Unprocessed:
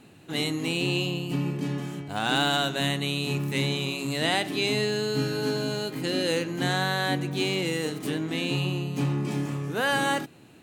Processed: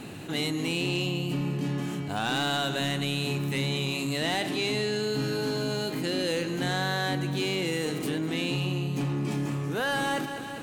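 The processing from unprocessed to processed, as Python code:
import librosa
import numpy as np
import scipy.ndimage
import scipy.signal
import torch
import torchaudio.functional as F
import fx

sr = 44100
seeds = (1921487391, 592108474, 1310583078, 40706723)

p1 = fx.lowpass(x, sr, hz=12000.0, slope=12, at=(4.48, 5.03))
p2 = 10.0 ** (-18.5 / 20.0) * np.tanh(p1 / 10.0 ** (-18.5 / 20.0))
p3 = p2 + fx.echo_feedback(p2, sr, ms=199, feedback_pct=59, wet_db=-17.0, dry=0)
p4 = fx.env_flatten(p3, sr, amount_pct=50)
y = F.gain(torch.from_numpy(p4), -2.0).numpy()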